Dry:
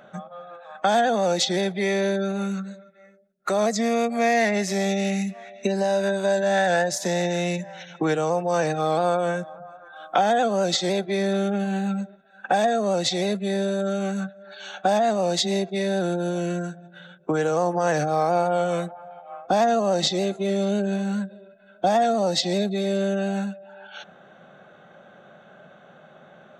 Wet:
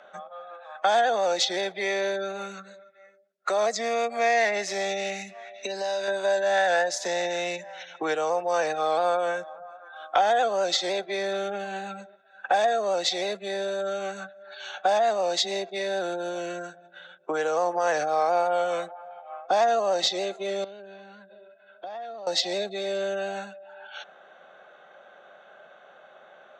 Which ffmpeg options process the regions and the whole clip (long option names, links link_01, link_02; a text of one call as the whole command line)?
ffmpeg -i in.wav -filter_complex "[0:a]asettb=1/sr,asplit=3[link_01][link_02][link_03];[link_01]atrim=end=5.544[link_04];[link_02]atrim=start=5.54:end=6.08,asetpts=PTS-STARTPTS,afade=type=in:duration=0.004:curve=qsin,afade=type=out:start_time=0.536:duration=0.004:curve=qsin,equalizer=frequency=4500:width=0.99:gain=7.5,acompressor=threshold=-26dB:ratio=2:attack=3.2:release=140:knee=1:detection=peak[link_05];[link_03]atrim=start=6.076[link_06];[link_04][link_05]acrossfade=duration=0.004:curve1=hsin:curve2=qsin[link_07];[link_07][link_06]acrossfade=duration=0.004:curve1=qsin:curve2=hsin,asettb=1/sr,asplit=3[link_08][link_09][link_10];[link_08]atrim=end=20.644[link_11];[link_09]atrim=start=20.64:end=22.27,asetpts=PTS-STARTPTS,afade=type=in:duration=0.004:curve=qsin,afade=type=out:start_time=1.626:duration=0.004:curve=qsin,lowpass=frequency=4600:width=0.5412,lowpass=frequency=4600:width=1.3066,acompressor=threshold=-38dB:ratio=3:attack=3.2:release=140:knee=1:detection=peak[link_12];[link_10]atrim=start=22.266[link_13];[link_11][link_12]acrossfade=duration=0.004:curve1=hsin:curve2=qsin[link_14];[link_14][link_13]acrossfade=duration=0.004:curve1=qsin:curve2=hsin,acrossover=split=400 7700:gain=0.0708 1 0.112[link_15][link_16][link_17];[link_15][link_16][link_17]amix=inputs=3:normalize=0,acontrast=36,volume=-5.5dB" out.wav